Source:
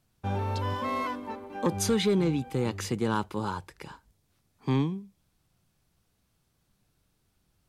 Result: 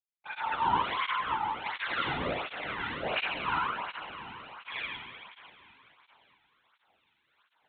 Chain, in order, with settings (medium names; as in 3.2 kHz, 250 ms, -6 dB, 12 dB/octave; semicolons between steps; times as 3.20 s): tracing distortion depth 0.5 ms; high-pass 120 Hz; reverse; upward compressor, threshold -39 dBFS; reverse; LFO high-pass saw down 1.3 Hz 650–2700 Hz; on a send: echo whose repeats swap between lows and highs 107 ms, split 1.1 kHz, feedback 90%, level -12 dB; on the sum: Schroeder reverb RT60 1.2 s, combs from 26 ms, DRR -4.5 dB; LPC vocoder at 8 kHz whisper; expander -42 dBFS; cancelling through-zero flanger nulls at 1.4 Hz, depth 1.9 ms